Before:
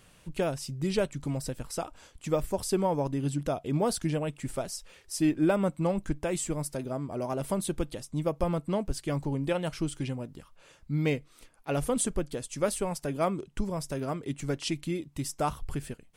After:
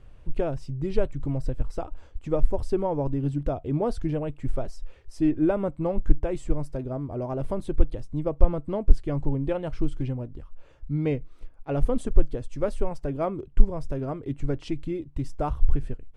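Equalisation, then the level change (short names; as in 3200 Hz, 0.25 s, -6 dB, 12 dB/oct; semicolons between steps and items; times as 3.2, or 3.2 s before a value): tilt -4 dB/oct; bell 180 Hz -11.5 dB 0.77 oct; high shelf 9100 Hz -10 dB; -1.5 dB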